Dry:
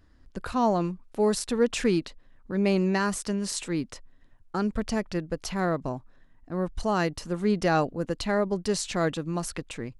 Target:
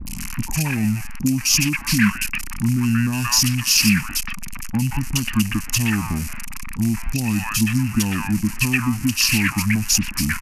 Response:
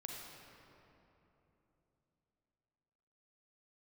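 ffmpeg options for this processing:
-filter_complex "[0:a]aeval=exprs='val(0)+0.5*0.0251*sgn(val(0))':channel_layout=same,adynamicequalizer=threshold=0.00891:dfrequency=220:dqfactor=4.4:tfrequency=220:tqfactor=4.4:attack=5:release=100:ratio=0.375:range=2.5:mode=cutabove:tftype=bell,asetrate=28595,aresample=44100,atempo=1.54221,acompressor=threshold=-25dB:ratio=6,firequalizer=gain_entry='entry(160,0);entry(230,7);entry(420,-19);entry(600,-19);entry(920,-1);entry(2700,14);entry(4000,-6);entry(7800,-19)':delay=0.05:min_phase=1,asetrate=42336,aresample=44100,acrossover=split=800|2700[link_01][link_02][link_03];[link_03]adelay=60[link_04];[link_02]adelay=180[link_05];[link_01][link_05][link_04]amix=inputs=3:normalize=0,aexciter=amount=15.4:drive=10:freq=5600,volume=8dB"

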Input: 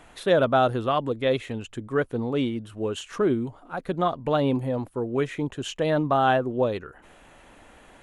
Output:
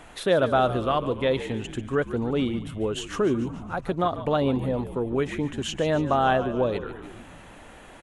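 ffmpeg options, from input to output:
ffmpeg -i in.wav -filter_complex "[0:a]asplit=2[link_01][link_02];[link_02]acompressor=threshold=-32dB:ratio=6,volume=2dB[link_03];[link_01][link_03]amix=inputs=2:normalize=0,asplit=8[link_04][link_05][link_06][link_07][link_08][link_09][link_10][link_11];[link_05]adelay=144,afreqshift=-68,volume=-13dB[link_12];[link_06]adelay=288,afreqshift=-136,volume=-17.2dB[link_13];[link_07]adelay=432,afreqshift=-204,volume=-21.3dB[link_14];[link_08]adelay=576,afreqshift=-272,volume=-25.5dB[link_15];[link_09]adelay=720,afreqshift=-340,volume=-29.6dB[link_16];[link_10]adelay=864,afreqshift=-408,volume=-33.8dB[link_17];[link_11]adelay=1008,afreqshift=-476,volume=-37.9dB[link_18];[link_04][link_12][link_13][link_14][link_15][link_16][link_17][link_18]amix=inputs=8:normalize=0,volume=-3dB" out.wav

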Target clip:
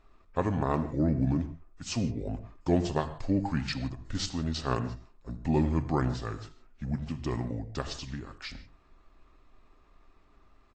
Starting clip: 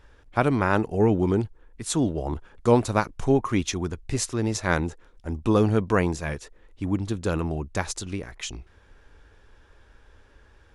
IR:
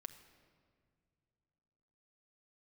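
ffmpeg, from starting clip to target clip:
-filter_complex "[0:a]asetrate=32097,aresample=44100,atempo=1.37395[link_01];[1:a]atrim=start_sample=2205,afade=type=out:start_time=0.18:duration=0.01,atrim=end_sample=8379,asetrate=33516,aresample=44100[link_02];[link_01][link_02]afir=irnorm=-1:irlink=0,volume=-2dB" -ar 22050 -c:a aac -b:a 32k

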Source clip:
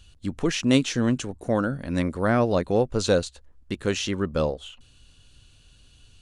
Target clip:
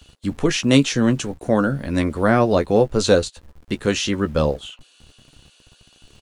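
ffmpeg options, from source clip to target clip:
ffmpeg -i in.wav -filter_complex "[0:a]acrossover=split=400|2300[link_01][link_02][link_03];[link_01]aeval=exprs='val(0)*gte(abs(val(0)),0.00355)':channel_layout=same[link_04];[link_04][link_02][link_03]amix=inputs=3:normalize=0,asplit=2[link_05][link_06];[link_06]adelay=14,volume=-9dB[link_07];[link_05][link_07]amix=inputs=2:normalize=0,volume=5dB" out.wav

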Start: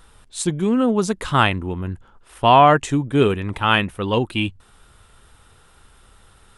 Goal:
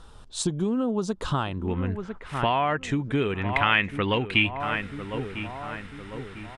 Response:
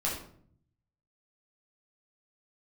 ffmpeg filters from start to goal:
-filter_complex "[0:a]lowpass=6000,asplit=2[link_01][link_02];[link_02]adelay=999,lowpass=frequency=1300:poles=1,volume=-16dB,asplit=2[link_03][link_04];[link_04]adelay=999,lowpass=frequency=1300:poles=1,volume=0.53,asplit=2[link_05][link_06];[link_06]adelay=999,lowpass=frequency=1300:poles=1,volume=0.53,asplit=2[link_07][link_08];[link_08]adelay=999,lowpass=frequency=1300:poles=1,volume=0.53,asplit=2[link_09][link_10];[link_10]adelay=999,lowpass=frequency=1300:poles=1,volume=0.53[link_11];[link_01][link_03][link_05][link_07][link_09][link_11]amix=inputs=6:normalize=0,acompressor=threshold=-26dB:ratio=6,asetnsamples=nb_out_samples=441:pad=0,asendcmd='1.68 equalizer g 7;3.53 equalizer g 14.5',equalizer=frequency=2100:width=1.8:gain=-11,volume=3dB"

